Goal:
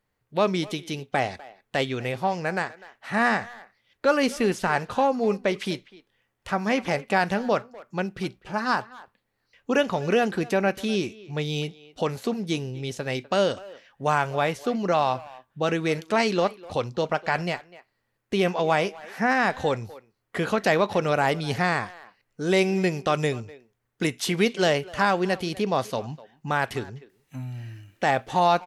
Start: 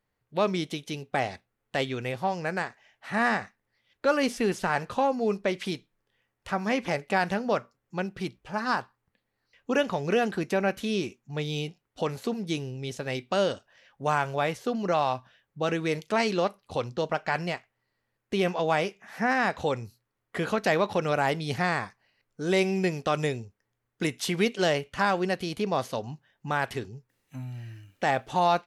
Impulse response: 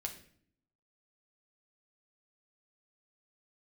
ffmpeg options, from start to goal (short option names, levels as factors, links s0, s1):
-filter_complex "[0:a]asplit=2[s0][s1];[s1]adelay=250,highpass=300,lowpass=3400,asoftclip=type=hard:threshold=0.0841,volume=0.126[s2];[s0][s2]amix=inputs=2:normalize=0,volume=1.41"